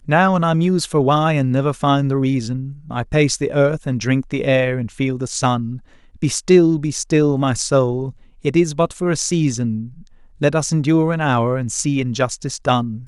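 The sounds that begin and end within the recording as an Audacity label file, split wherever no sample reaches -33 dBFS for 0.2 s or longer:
6.220000	8.110000	sound
8.450000	10.020000	sound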